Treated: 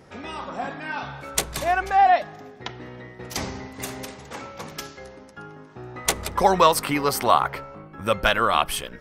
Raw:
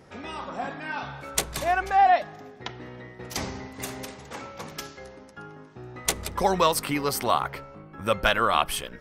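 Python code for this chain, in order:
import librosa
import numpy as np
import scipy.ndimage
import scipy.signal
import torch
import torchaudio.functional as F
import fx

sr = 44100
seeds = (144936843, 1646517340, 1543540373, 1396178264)

y = fx.peak_eq(x, sr, hz=1000.0, db=4.0, octaves=2.2, at=(5.69, 7.88))
y = y * 10.0 ** (2.0 / 20.0)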